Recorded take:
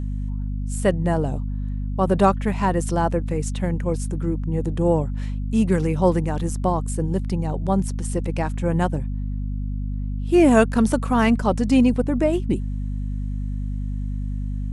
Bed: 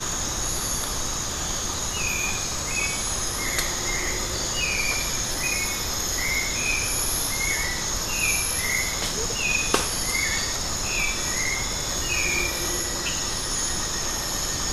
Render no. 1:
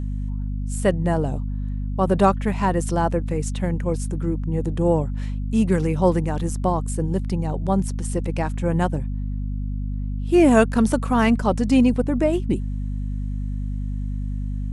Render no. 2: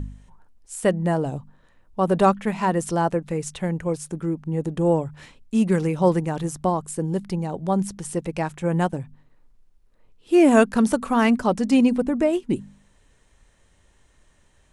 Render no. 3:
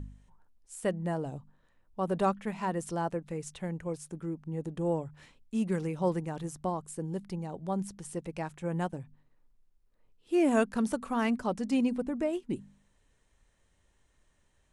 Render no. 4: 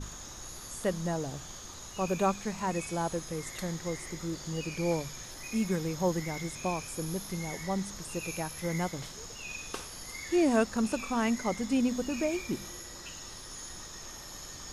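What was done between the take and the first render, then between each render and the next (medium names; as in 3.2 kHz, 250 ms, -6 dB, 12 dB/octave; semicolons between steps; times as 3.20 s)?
no audible change
de-hum 50 Hz, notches 5
trim -10.5 dB
add bed -17.5 dB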